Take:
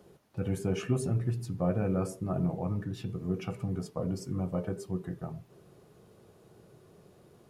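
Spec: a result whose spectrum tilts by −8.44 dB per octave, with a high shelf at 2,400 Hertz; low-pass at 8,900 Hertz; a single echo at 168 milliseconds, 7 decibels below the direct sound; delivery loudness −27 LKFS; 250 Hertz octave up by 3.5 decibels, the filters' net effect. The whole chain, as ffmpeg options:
ffmpeg -i in.wav -af "lowpass=8900,equalizer=frequency=250:width_type=o:gain=5.5,highshelf=frequency=2400:gain=-6,aecho=1:1:168:0.447,volume=3.5dB" out.wav

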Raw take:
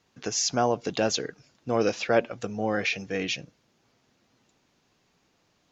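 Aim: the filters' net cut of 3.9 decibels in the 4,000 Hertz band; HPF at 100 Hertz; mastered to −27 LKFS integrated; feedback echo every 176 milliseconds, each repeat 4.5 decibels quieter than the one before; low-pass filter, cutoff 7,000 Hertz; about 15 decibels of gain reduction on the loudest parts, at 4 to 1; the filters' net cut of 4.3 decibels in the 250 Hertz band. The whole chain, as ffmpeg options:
ffmpeg -i in.wav -af "highpass=100,lowpass=7000,equalizer=frequency=250:width_type=o:gain=-5.5,equalizer=frequency=4000:width_type=o:gain=-4.5,acompressor=threshold=-36dB:ratio=4,aecho=1:1:176|352|528|704|880|1056|1232|1408|1584:0.596|0.357|0.214|0.129|0.0772|0.0463|0.0278|0.0167|0.01,volume=10.5dB" out.wav

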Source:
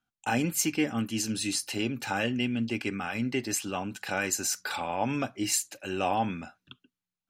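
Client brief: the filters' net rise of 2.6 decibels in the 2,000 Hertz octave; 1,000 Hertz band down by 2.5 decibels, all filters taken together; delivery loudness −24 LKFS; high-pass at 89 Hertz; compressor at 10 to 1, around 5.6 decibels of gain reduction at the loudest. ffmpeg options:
ffmpeg -i in.wav -af "highpass=89,equalizer=frequency=1000:width_type=o:gain=-4.5,equalizer=frequency=2000:width_type=o:gain=5,acompressor=threshold=-28dB:ratio=10,volume=9dB" out.wav

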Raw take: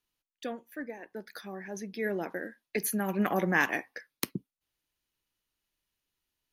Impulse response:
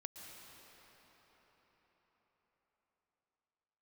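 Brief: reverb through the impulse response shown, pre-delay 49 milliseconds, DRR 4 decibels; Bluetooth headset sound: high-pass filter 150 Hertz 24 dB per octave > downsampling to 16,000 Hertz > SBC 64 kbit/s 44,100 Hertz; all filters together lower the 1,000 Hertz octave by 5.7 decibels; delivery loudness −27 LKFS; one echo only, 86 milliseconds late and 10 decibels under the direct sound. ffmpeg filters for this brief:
-filter_complex "[0:a]equalizer=frequency=1000:width_type=o:gain=-8,aecho=1:1:86:0.316,asplit=2[link_01][link_02];[1:a]atrim=start_sample=2205,adelay=49[link_03];[link_02][link_03]afir=irnorm=-1:irlink=0,volume=-0.5dB[link_04];[link_01][link_04]amix=inputs=2:normalize=0,highpass=frequency=150:width=0.5412,highpass=frequency=150:width=1.3066,aresample=16000,aresample=44100,volume=6.5dB" -ar 44100 -c:a sbc -b:a 64k

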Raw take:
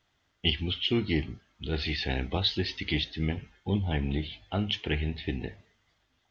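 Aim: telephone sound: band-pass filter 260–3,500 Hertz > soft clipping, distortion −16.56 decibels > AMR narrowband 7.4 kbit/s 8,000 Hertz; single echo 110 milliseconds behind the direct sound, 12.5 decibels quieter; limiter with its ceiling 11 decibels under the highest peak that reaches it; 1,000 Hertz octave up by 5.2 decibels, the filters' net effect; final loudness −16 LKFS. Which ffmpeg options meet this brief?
ffmpeg -i in.wav -af "equalizer=frequency=1000:width_type=o:gain=7.5,alimiter=limit=-20dB:level=0:latency=1,highpass=260,lowpass=3500,aecho=1:1:110:0.237,asoftclip=threshold=-26.5dB,volume=23dB" -ar 8000 -c:a libopencore_amrnb -b:a 7400 out.amr

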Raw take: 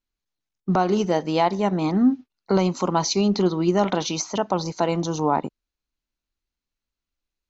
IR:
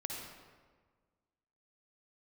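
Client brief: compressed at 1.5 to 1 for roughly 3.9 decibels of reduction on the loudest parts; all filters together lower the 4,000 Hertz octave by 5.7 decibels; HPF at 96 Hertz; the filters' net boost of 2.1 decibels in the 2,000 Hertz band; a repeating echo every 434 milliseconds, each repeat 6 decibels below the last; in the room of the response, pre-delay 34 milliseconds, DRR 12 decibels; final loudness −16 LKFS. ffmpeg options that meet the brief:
-filter_complex "[0:a]highpass=96,equalizer=frequency=2000:width_type=o:gain=5,equalizer=frequency=4000:width_type=o:gain=-9,acompressor=threshold=-24dB:ratio=1.5,aecho=1:1:434|868|1302|1736|2170|2604:0.501|0.251|0.125|0.0626|0.0313|0.0157,asplit=2[link_01][link_02];[1:a]atrim=start_sample=2205,adelay=34[link_03];[link_02][link_03]afir=irnorm=-1:irlink=0,volume=-12.5dB[link_04];[link_01][link_04]amix=inputs=2:normalize=0,volume=8.5dB"

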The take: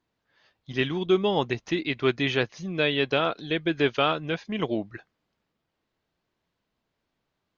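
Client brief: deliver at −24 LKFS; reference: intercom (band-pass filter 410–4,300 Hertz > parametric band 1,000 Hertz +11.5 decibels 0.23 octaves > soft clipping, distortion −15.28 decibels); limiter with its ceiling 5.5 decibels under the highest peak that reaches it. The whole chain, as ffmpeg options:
ffmpeg -i in.wav -af "alimiter=limit=-14dB:level=0:latency=1,highpass=410,lowpass=4300,equalizer=frequency=1000:width_type=o:width=0.23:gain=11.5,asoftclip=threshold=-19dB,volume=7dB" out.wav

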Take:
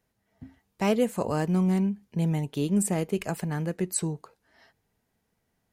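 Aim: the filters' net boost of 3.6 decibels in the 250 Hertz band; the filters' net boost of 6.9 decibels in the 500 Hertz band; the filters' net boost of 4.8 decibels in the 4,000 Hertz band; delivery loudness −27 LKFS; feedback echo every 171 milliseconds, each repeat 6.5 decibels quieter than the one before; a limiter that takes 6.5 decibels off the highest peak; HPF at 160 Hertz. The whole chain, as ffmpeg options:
ffmpeg -i in.wav -af "highpass=160,equalizer=frequency=250:width_type=o:gain=6,equalizer=frequency=500:width_type=o:gain=6.5,equalizer=frequency=4000:width_type=o:gain=6.5,alimiter=limit=-13dB:level=0:latency=1,aecho=1:1:171|342|513|684|855|1026:0.473|0.222|0.105|0.0491|0.0231|0.0109,volume=-3dB" out.wav

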